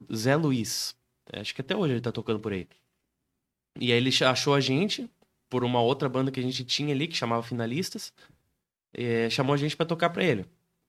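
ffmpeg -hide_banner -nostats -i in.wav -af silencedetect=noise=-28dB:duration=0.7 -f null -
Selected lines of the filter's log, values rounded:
silence_start: 2.62
silence_end: 3.82 | silence_duration: 1.20
silence_start: 8.04
silence_end: 8.95 | silence_duration: 0.91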